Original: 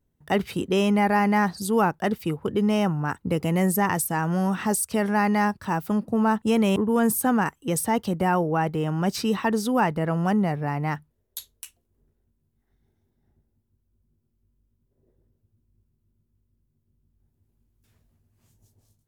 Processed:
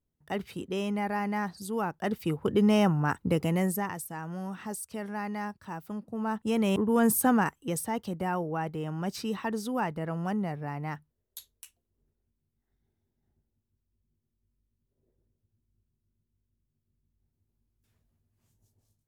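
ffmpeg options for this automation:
-af "volume=3.76,afade=t=in:st=1.87:d=0.65:silence=0.334965,afade=t=out:st=3.21:d=0.73:silence=0.237137,afade=t=in:st=6.12:d=1.1:silence=0.251189,afade=t=out:st=7.22:d=0.64:silence=0.421697"

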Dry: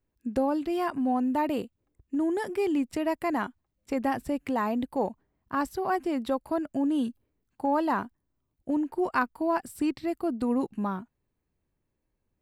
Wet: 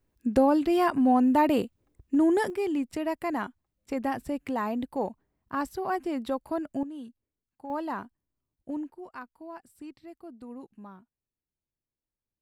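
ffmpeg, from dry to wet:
-af "asetnsamples=n=441:p=0,asendcmd='2.5 volume volume -2dB;6.83 volume volume -13.5dB;7.7 volume volume -6.5dB;8.9 volume volume -16dB',volume=1.78"

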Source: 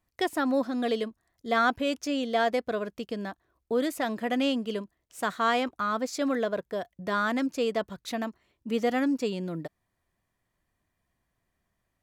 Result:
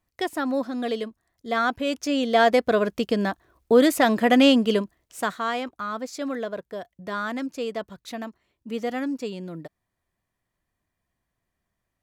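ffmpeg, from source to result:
-af "volume=3.35,afade=t=in:st=1.75:d=1.19:silence=0.316228,afade=t=out:st=4.72:d=0.72:silence=0.237137"

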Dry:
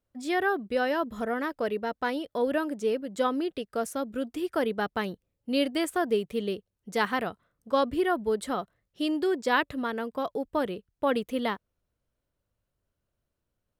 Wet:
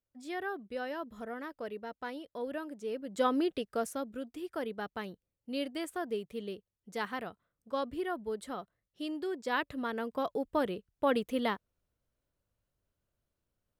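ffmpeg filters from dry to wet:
-af "volume=2.24,afade=t=in:st=2.87:d=0.54:silence=0.281838,afade=t=out:st=3.41:d=0.83:silence=0.334965,afade=t=in:st=9.39:d=0.78:silence=0.446684"

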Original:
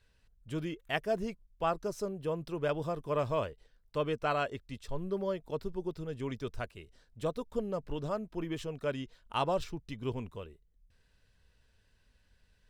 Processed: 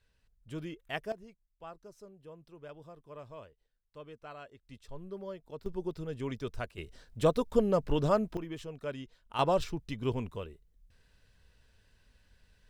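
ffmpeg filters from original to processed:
-af "asetnsamples=n=441:p=0,asendcmd='1.12 volume volume -16dB;4.63 volume volume -8dB;5.66 volume volume 0.5dB;6.78 volume volume 8dB;8.37 volume volume -4dB;9.39 volume volume 3.5dB',volume=0.631"

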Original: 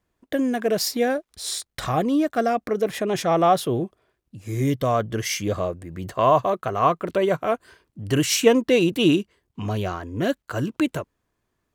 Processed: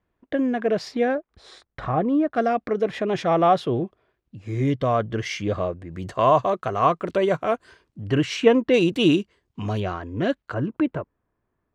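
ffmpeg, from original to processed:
-af "asetnsamples=n=441:p=0,asendcmd='1.15 lowpass f 1600;2.34 lowpass f 3600;5.93 lowpass f 7200;8.04 lowpass f 2800;8.74 lowpass f 6900;9.8 lowpass f 3700;10.54 lowpass f 1600',lowpass=2700"

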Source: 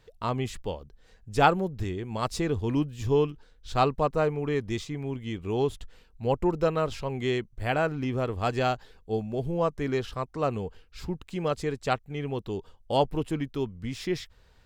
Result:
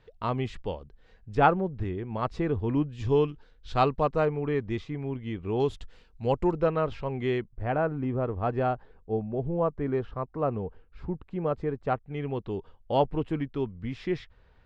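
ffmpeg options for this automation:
-af "asetnsamples=n=441:p=0,asendcmd='1.35 lowpass f 2000;2.92 lowpass f 4000;4.25 lowpass f 2400;5.6 lowpass f 5800;6.53 lowpass f 2400;7.48 lowpass f 1300;12.05 lowpass f 2500',lowpass=3300"

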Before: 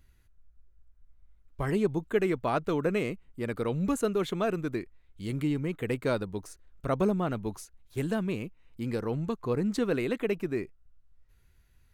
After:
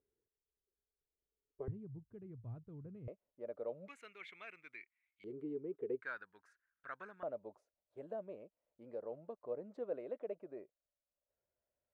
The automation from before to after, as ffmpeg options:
-af "asetnsamples=n=441:p=0,asendcmd='1.68 bandpass f 110;3.08 bandpass f 590;3.88 bandpass f 2200;5.24 bandpass f 410;6.02 bandpass f 1600;7.23 bandpass f 590',bandpass=f=430:t=q:w=8.3:csg=0"

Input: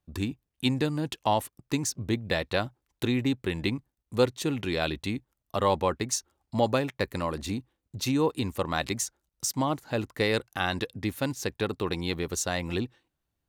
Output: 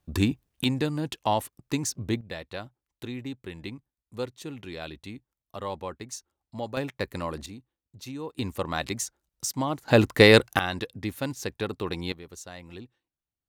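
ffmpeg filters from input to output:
-af "asetnsamples=n=441:p=0,asendcmd='0.64 volume volume 0dB;2.21 volume volume -9.5dB;6.77 volume volume -2dB;7.46 volume volume -11.5dB;8.39 volume volume -1dB;9.88 volume volume 11dB;10.59 volume volume -1.5dB;12.12 volume volume -13dB',volume=2.24"

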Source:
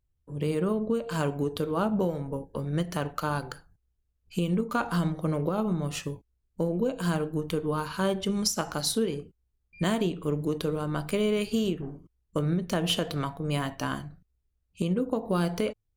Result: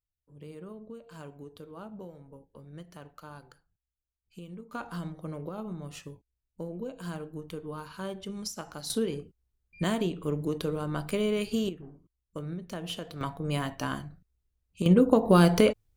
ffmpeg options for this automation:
-af "asetnsamples=n=441:p=0,asendcmd='4.73 volume volume -10dB;8.9 volume volume -2dB;11.69 volume volume -10dB;13.21 volume volume -1.5dB;14.86 volume volume 7.5dB',volume=0.141"

